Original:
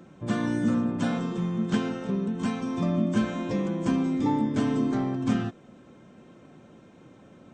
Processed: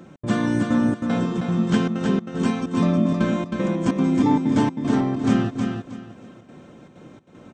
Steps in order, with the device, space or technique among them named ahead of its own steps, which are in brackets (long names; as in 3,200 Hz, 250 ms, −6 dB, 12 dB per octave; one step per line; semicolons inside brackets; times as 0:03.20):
trance gate with a delay (gate pattern "xx.xxxxx.xxx..xx" 192 BPM −60 dB; repeating echo 316 ms, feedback 26%, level −5 dB)
level +5.5 dB